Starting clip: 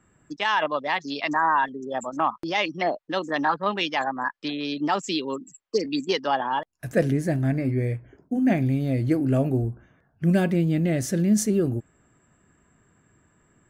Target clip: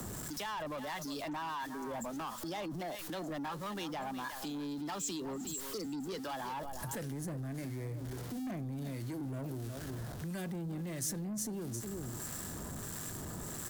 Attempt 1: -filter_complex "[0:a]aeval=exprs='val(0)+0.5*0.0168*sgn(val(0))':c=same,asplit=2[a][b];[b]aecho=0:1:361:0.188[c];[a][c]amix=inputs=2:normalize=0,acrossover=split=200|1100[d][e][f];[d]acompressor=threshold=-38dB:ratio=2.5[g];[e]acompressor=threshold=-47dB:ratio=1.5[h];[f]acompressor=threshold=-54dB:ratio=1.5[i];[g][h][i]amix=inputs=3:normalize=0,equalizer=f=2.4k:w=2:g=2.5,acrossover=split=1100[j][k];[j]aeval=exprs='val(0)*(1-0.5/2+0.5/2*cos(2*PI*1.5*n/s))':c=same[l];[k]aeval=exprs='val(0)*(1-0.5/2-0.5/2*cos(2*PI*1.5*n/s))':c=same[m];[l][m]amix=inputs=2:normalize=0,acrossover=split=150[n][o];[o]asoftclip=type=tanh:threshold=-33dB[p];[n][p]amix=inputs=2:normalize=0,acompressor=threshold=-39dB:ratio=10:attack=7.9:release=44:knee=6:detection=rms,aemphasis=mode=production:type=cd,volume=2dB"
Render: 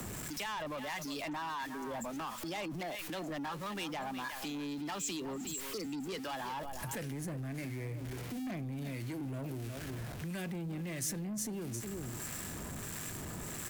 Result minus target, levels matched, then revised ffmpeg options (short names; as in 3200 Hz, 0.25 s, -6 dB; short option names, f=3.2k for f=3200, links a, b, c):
2000 Hz band +3.0 dB
-filter_complex "[0:a]aeval=exprs='val(0)+0.5*0.0168*sgn(val(0))':c=same,asplit=2[a][b];[b]aecho=0:1:361:0.188[c];[a][c]amix=inputs=2:normalize=0,acrossover=split=200|1100[d][e][f];[d]acompressor=threshold=-38dB:ratio=2.5[g];[e]acompressor=threshold=-47dB:ratio=1.5[h];[f]acompressor=threshold=-54dB:ratio=1.5[i];[g][h][i]amix=inputs=3:normalize=0,equalizer=f=2.4k:w=2:g=-6.5,acrossover=split=1100[j][k];[j]aeval=exprs='val(0)*(1-0.5/2+0.5/2*cos(2*PI*1.5*n/s))':c=same[l];[k]aeval=exprs='val(0)*(1-0.5/2-0.5/2*cos(2*PI*1.5*n/s))':c=same[m];[l][m]amix=inputs=2:normalize=0,acrossover=split=150[n][o];[o]asoftclip=type=tanh:threshold=-33dB[p];[n][p]amix=inputs=2:normalize=0,acompressor=threshold=-39dB:ratio=10:attack=7.9:release=44:knee=6:detection=rms,aemphasis=mode=production:type=cd,volume=2dB"